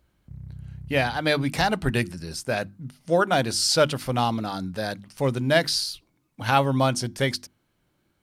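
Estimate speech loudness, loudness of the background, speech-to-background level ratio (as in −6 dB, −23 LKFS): −24.5 LKFS, −42.0 LKFS, 17.5 dB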